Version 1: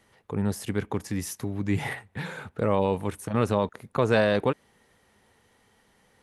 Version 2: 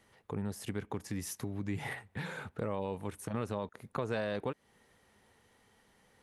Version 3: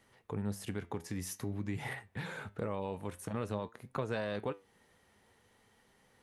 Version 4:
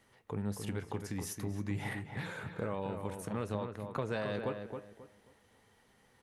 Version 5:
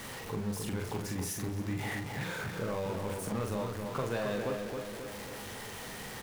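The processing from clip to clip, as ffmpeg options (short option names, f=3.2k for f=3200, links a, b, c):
-af "acompressor=threshold=-32dB:ratio=2.5,volume=-3.5dB"
-af "flanger=delay=7.3:depth=4.9:regen=78:speed=0.5:shape=triangular,volume=3.5dB"
-filter_complex "[0:a]asplit=2[a][b];[b]adelay=269,lowpass=f=2k:p=1,volume=-6dB,asplit=2[c][d];[d]adelay=269,lowpass=f=2k:p=1,volume=0.28,asplit=2[e][f];[f]adelay=269,lowpass=f=2k:p=1,volume=0.28,asplit=2[g][h];[h]adelay=269,lowpass=f=2k:p=1,volume=0.28[i];[a][c][e][g][i]amix=inputs=5:normalize=0"
-filter_complex "[0:a]aeval=exprs='val(0)+0.5*0.0141*sgn(val(0))':c=same,asplit=2[a][b];[b]adelay=43,volume=-5dB[c];[a][c]amix=inputs=2:normalize=0,volume=-1.5dB"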